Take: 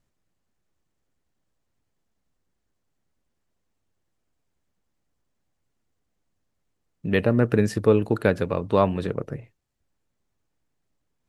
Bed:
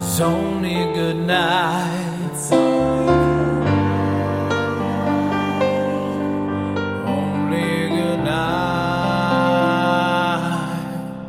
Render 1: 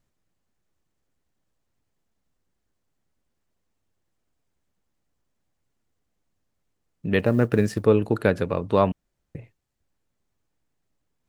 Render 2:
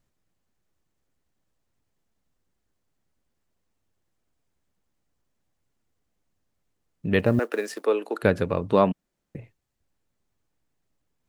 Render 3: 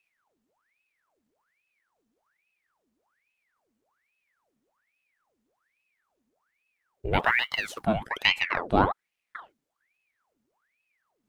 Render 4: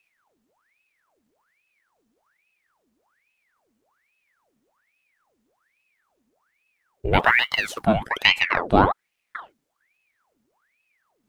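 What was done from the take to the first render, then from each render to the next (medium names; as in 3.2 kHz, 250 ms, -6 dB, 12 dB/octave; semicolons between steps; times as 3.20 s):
7.19–7.86 s: companding laws mixed up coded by A; 8.92–9.35 s: room tone
7.39–8.23 s: Bessel high-pass 500 Hz, order 8; 8.73–9.37 s: resonant low shelf 140 Hz -7.5 dB, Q 1.5
ring modulator with a swept carrier 1.4 kHz, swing 85%, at 1.2 Hz
trim +6 dB; peak limiter -1 dBFS, peak gain reduction 2 dB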